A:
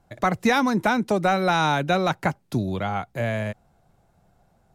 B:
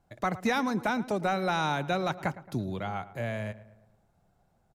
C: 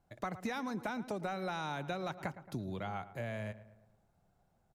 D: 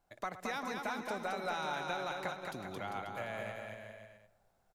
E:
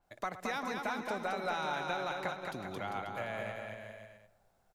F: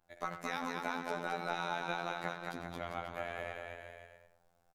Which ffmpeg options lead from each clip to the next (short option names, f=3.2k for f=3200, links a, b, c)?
-filter_complex "[0:a]asplit=2[a][b];[b]adelay=111,lowpass=f=2.2k:p=1,volume=-16dB,asplit=2[c][d];[d]adelay=111,lowpass=f=2.2k:p=1,volume=0.52,asplit=2[e][f];[f]adelay=111,lowpass=f=2.2k:p=1,volume=0.52,asplit=2[g][h];[h]adelay=111,lowpass=f=2.2k:p=1,volume=0.52,asplit=2[i][j];[j]adelay=111,lowpass=f=2.2k:p=1,volume=0.52[k];[a][c][e][g][i][k]amix=inputs=6:normalize=0,volume=-7.5dB"
-af "acompressor=threshold=-30dB:ratio=6,volume=-4.5dB"
-af "equalizer=f=120:w=0.45:g=-12.5,aecho=1:1:220|396|536.8|649.4|739.6:0.631|0.398|0.251|0.158|0.1,volume=1.5dB"
-af "adynamicequalizer=threshold=0.00178:dfrequency=4800:dqfactor=0.7:tfrequency=4800:tqfactor=0.7:attack=5:release=100:ratio=0.375:range=2:mode=cutabove:tftype=highshelf,volume=2dB"
-filter_complex "[0:a]asplit=2[a][b];[b]adelay=90,highpass=300,lowpass=3.4k,asoftclip=type=hard:threshold=-32dB,volume=-9dB[c];[a][c]amix=inputs=2:normalize=0,afftfilt=real='hypot(re,im)*cos(PI*b)':imag='0':win_size=2048:overlap=0.75,volume=1.5dB"